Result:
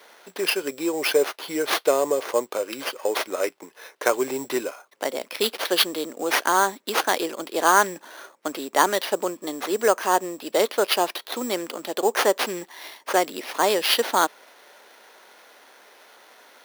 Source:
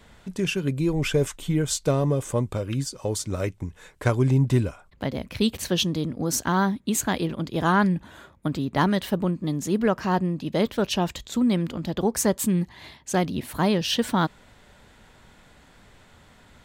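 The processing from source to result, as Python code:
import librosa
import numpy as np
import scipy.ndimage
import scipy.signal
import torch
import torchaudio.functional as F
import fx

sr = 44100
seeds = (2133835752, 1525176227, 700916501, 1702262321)

y = fx.sample_hold(x, sr, seeds[0], rate_hz=7700.0, jitter_pct=0)
y = scipy.signal.sosfilt(scipy.signal.butter(4, 390.0, 'highpass', fs=sr, output='sos'), y)
y = F.gain(torch.from_numpy(y), 5.5).numpy()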